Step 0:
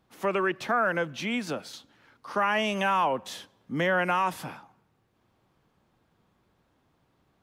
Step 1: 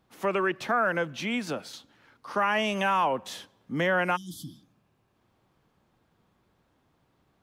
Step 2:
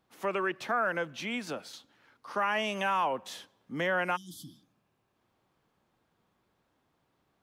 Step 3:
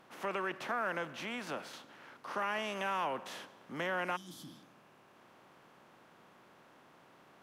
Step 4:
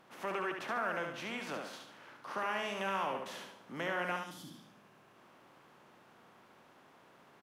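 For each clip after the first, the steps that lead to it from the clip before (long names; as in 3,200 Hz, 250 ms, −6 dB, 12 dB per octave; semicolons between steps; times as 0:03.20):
healed spectral selection 0:04.18–0:05.10, 350–3,000 Hz after
low-shelf EQ 210 Hz −6.5 dB; level −3.5 dB
compressor on every frequency bin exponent 0.6; level −8.5 dB
repeating echo 72 ms, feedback 38%, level −5 dB; level −1.5 dB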